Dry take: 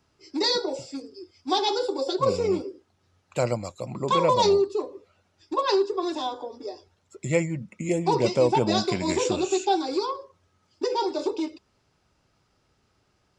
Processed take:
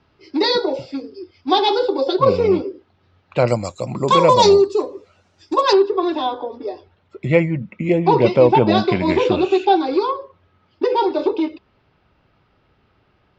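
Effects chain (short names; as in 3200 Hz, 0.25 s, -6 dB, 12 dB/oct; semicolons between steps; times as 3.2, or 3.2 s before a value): LPF 4000 Hz 24 dB/oct, from 3.48 s 8400 Hz, from 5.73 s 3500 Hz; gain +8.5 dB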